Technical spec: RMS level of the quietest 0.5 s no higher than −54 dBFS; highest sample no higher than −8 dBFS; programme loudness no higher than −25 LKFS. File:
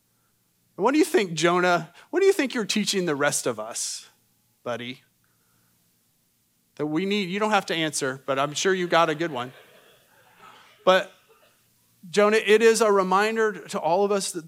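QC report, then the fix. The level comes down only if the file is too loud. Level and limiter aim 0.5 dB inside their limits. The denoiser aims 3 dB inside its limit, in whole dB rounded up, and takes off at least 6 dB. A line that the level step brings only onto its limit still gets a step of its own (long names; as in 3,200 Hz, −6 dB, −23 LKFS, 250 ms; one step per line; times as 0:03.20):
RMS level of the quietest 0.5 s −68 dBFS: in spec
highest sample −5.0 dBFS: out of spec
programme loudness −23.0 LKFS: out of spec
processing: level −2.5 dB
brickwall limiter −8.5 dBFS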